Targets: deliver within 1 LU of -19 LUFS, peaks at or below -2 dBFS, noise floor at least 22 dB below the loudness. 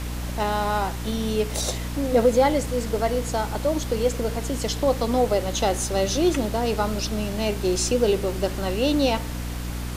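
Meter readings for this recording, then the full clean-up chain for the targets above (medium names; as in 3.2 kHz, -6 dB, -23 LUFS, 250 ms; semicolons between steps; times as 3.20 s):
hum 60 Hz; highest harmonic 300 Hz; hum level -28 dBFS; noise floor -30 dBFS; noise floor target -46 dBFS; loudness -24.0 LUFS; peak level -8.0 dBFS; loudness target -19.0 LUFS
-> hum notches 60/120/180/240/300 Hz; noise print and reduce 16 dB; trim +5 dB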